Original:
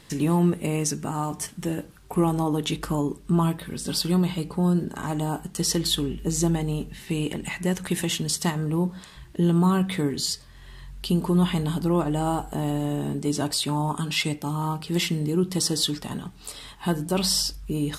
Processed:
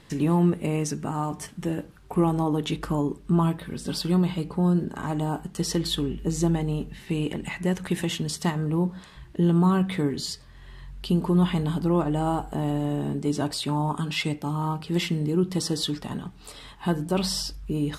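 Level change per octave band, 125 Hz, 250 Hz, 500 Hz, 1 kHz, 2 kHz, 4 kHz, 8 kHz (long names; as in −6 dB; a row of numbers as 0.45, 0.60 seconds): 0.0, 0.0, 0.0, −0.5, −1.5, −4.0, −7.0 decibels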